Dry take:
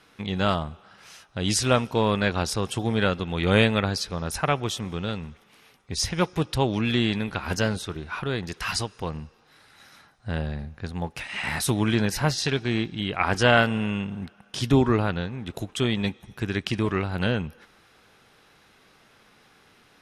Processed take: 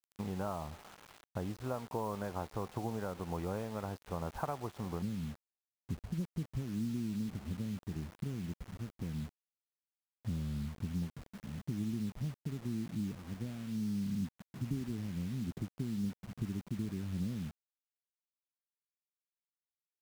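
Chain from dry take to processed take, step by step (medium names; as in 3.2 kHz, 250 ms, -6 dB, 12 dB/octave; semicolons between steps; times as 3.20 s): compression 16:1, threshold -31 dBFS, peak gain reduction 18.5 dB; resonant low-pass 940 Hz, resonance Q 1.9, from 5.02 s 220 Hz; word length cut 8-bit, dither none; trim -4 dB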